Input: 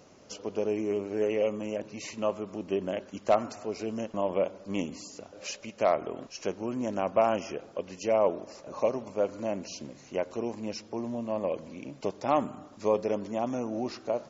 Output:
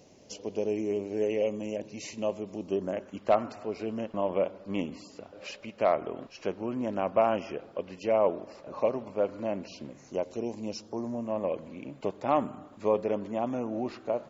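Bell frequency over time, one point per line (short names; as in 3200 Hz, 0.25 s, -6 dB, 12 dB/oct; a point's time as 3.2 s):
bell -13 dB 0.67 oct
2.54 s 1300 Hz
3.21 s 6400 Hz
9.87 s 6400 Hz
10.36 s 1000 Hz
11.46 s 5600 Hz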